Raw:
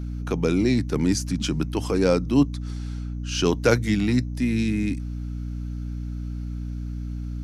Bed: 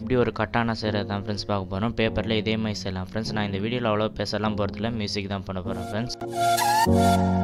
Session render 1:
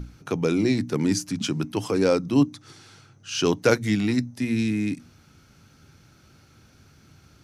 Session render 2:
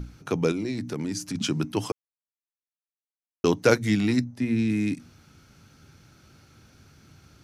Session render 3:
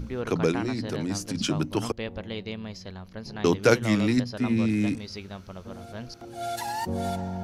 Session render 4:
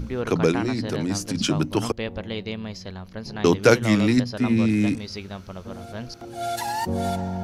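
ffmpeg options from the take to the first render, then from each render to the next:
-af "bandreject=f=60:t=h:w=6,bandreject=f=120:t=h:w=6,bandreject=f=180:t=h:w=6,bandreject=f=240:t=h:w=6,bandreject=f=300:t=h:w=6"
-filter_complex "[0:a]asettb=1/sr,asplit=3[s0][s1][s2];[s0]atrim=end=0.514[s3];[s1]atrim=start=0.51:end=1.35,asetpts=PTS-STARTPTS,afade=t=in:d=0.004:c=qsin,afade=t=out:st=0.836:d=0.004:c=qsin,acompressor=threshold=0.0447:ratio=4:attack=3.2:release=140:knee=1:detection=peak[s4];[s2]atrim=start=1.346[s5];[s3][s4]acrossfade=d=0.004:c1=hsin:c2=qsin[s6];[s6][s5]acrossfade=d=0.004:c1=qsin:c2=hsin,asettb=1/sr,asplit=3[s7][s8][s9];[s7]atrim=end=4.244[s10];[s8]atrim=start=4.24:end=4.7,asetpts=PTS-STARTPTS,afade=t=in:d=0.004:c=qsin,afade=t=out:st=0.456:d=0.004:c=qsin,highshelf=f=3000:g=-10[s11];[s9]atrim=start=4.696[s12];[s10][s11]acrossfade=d=0.004:c1=hsin:c2=qsin[s13];[s13][s12]acrossfade=d=0.004:c1=qsin:c2=hsin,asplit=3[s14][s15][s16];[s14]atrim=end=1.92,asetpts=PTS-STARTPTS,afade=t=out:st=1.916:d=0.004:c=hsin[s17];[s15]atrim=start=1.92:end=3.44,asetpts=PTS-STARTPTS,volume=0[s18];[s16]atrim=start=3.44,asetpts=PTS-STARTPTS,afade=t=in:d=0.004:c=hsin[s19];[s17][s18][s19]concat=n=3:v=0:a=1"
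-filter_complex "[1:a]volume=0.299[s0];[0:a][s0]amix=inputs=2:normalize=0"
-af "volume=1.58,alimiter=limit=0.891:level=0:latency=1"

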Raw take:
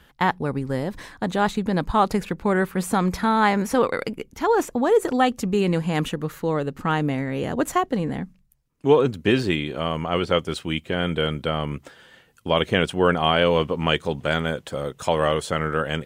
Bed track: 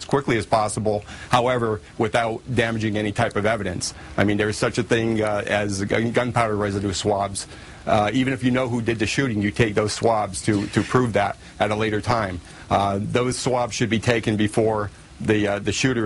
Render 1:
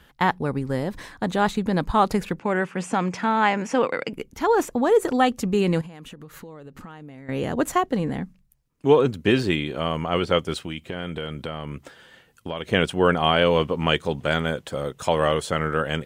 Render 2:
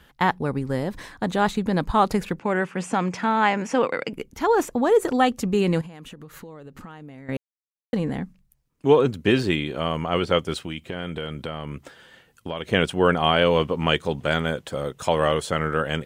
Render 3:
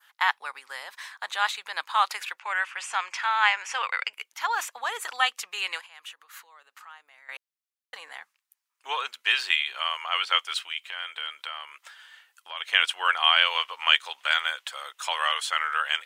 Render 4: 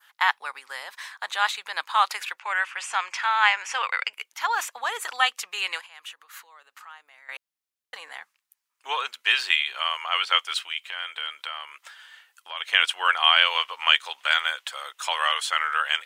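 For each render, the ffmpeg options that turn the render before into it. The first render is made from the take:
-filter_complex "[0:a]asettb=1/sr,asplit=3[s0][s1][s2];[s0]atrim=end=2.394[s3];[s1]atrim=start=2.39:end=4.13,asetpts=PTS-STARTPTS,afade=t=in:d=0.004:c=qsin,afade=t=out:st=1.736:d=0.004:c=qsin,highpass=f=140:w=0.5412,highpass=f=140:w=1.3066,equalizer=f=200:t=q:w=4:g=-5,equalizer=f=400:t=q:w=4:g=-4,equalizer=f=1200:t=q:w=4:g=-3,equalizer=f=2700:t=q:w=4:g=6,equalizer=f=4000:t=q:w=4:g=-9,lowpass=f=7600:w=0.5412,lowpass=f=7600:w=1.3066[s4];[s2]atrim=start=4.126[s5];[s3][s4]acrossfade=d=0.004:c1=hsin:c2=qsin[s6];[s6][s5]acrossfade=d=0.004:c1=qsin:c2=hsin,asettb=1/sr,asplit=3[s7][s8][s9];[s7]atrim=end=5.814[s10];[s8]atrim=start=5.81:end=7.29,asetpts=PTS-STARTPTS,afade=t=in:d=0.004:c=qsin,afade=t=out:st=1.476:d=0.004:c=qsin,acompressor=threshold=0.0158:ratio=20:attack=3.2:release=140:knee=1:detection=peak[s11];[s9]atrim=start=7.286[s12];[s10][s11]acrossfade=d=0.004:c1=hsin:c2=qsin[s13];[s13][s12]acrossfade=d=0.004:c1=qsin:c2=hsin,asettb=1/sr,asplit=3[s14][s15][s16];[s14]atrim=end=10.584[s17];[s15]atrim=start=10.58:end=12.73,asetpts=PTS-STARTPTS,afade=t=in:d=0.004:c=qsin,afade=t=out:st=2.146:d=0.004:c=qsin,acompressor=threshold=0.0447:ratio=4:attack=3.2:release=140:knee=1:detection=peak[s18];[s16]atrim=start=12.726[s19];[s17][s18]acrossfade=d=0.004:c1=hsin:c2=qsin[s20];[s20][s19]acrossfade=d=0.004:c1=qsin:c2=hsin"
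-filter_complex "[0:a]asplit=3[s0][s1][s2];[s0]atrim=end=7.37,asetpts=PTS-STARTPTS,afade=t=out:st=7.366:d=0.004:c=hsin[s3];[s1]atrim=start=7.37:end=7.93,asetpts=PTS-STARTPTS,volume=0[s4];[s2]atrim=start=7.93,asetpts=PTS-STARTPTS,afade=t=in:d=0.004:c=hsin[s5];[s3][s4][s5]concat=n=3:v=0:a=1"
-af "highpass=f=1000:w=0.5412,highpass=f=1000:w=1.3066,adynamicequalizer=threshold=0.00891:dfrequency=2900:dqfactor=0.99:tfrequency=2900:tqfactor=0.99:attack=5:release=100:ratio=0.375:range=3:mode=boostabove:tftype=bell"
-af "volume=1.26,alimiter=limit=0.708:level=0:latency=1"

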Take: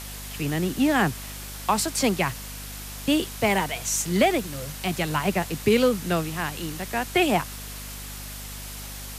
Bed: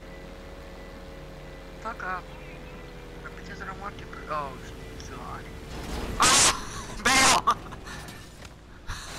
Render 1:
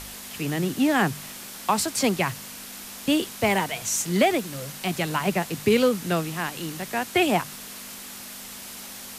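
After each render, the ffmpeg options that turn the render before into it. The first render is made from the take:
-af "bandreject=f=50:t=h:w=4,bandreject=f=100:t=h:w=4,bandreject=f=150:t=h:w=4"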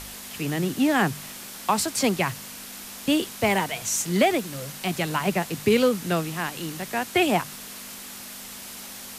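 -af anull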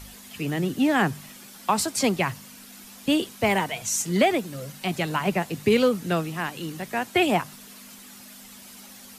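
-af "afftdn=nr=9:nf=-40"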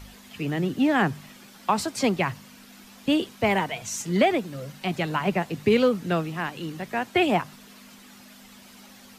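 -af "equalizer=f=11000:w=0.55:g=-10"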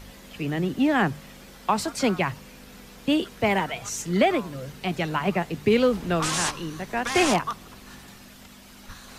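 -filter_complex "[1:a]volume=0.398[s0];[0:a][s0]amix=inputs=2:normalize=0"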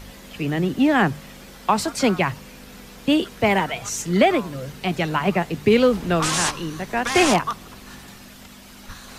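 -af "volume=1.58"

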